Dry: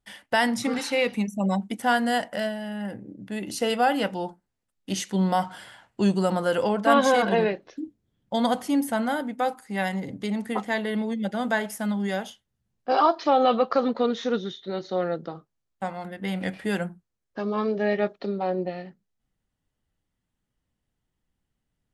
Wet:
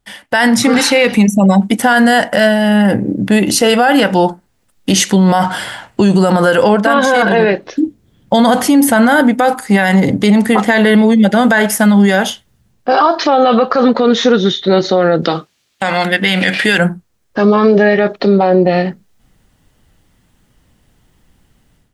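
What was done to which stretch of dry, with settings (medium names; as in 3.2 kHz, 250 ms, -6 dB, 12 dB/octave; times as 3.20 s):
15.22–16.78 s: frequency weighting D
whole clip: dynamic bell 1.6 kHz, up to +6 dB, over -43 dBFS, Q 4.3; level rider gain up to 14.5 dB; loudness maximiser +12.5 dB; trim -1 dB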